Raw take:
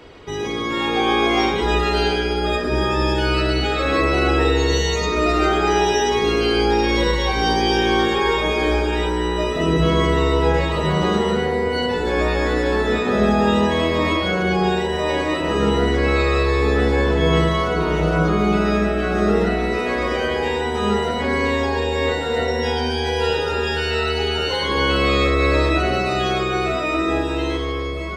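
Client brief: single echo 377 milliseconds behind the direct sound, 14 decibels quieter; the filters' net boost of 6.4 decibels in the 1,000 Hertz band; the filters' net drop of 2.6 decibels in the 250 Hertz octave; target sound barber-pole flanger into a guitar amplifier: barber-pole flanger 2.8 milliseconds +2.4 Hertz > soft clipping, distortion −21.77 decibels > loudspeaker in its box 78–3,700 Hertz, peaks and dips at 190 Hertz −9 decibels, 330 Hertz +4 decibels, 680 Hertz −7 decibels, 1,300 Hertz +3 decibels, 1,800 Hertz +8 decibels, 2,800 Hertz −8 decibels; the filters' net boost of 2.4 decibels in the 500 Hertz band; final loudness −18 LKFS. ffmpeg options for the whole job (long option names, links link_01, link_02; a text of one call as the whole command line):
ffmpeg -i in.wav -filter_complex "[0:a]equalizer=frequency=250:width_type=o:gain=-9,equalizer=frequency=500:width_type=o:gain=5,equalizer=frequency=1000:width_type=o:gain=7,aecho=1:1:377:0.2,asplit=2[link_01][link_02];[link_02]adelay=2.8,afreqshift=2.4[link_03];[link_01][link_03]amix=inputs=2:normalize=1,asoftclip=threshold=-9.5dB,highpass=78,equalizer=frequency=190:width_type=q:width=4:gain=-9,equalizer=frequency=330:width_type=q:width=4:gain=4,equalizer=frequency=680:width_type=q:width=4:gain=-7,equalizer=frequency=1300:width_type=q:width=4:gain=3,equalizer=frequency=1800:width_type=q:width=4:gain=8,equalizer=frequency=2800:width_type=q:width=4:gain=-8,lowpass=frequency=3700:width=0.5412,lowpass=frequency=3700:width=1.3066,volume=2dB" out.wav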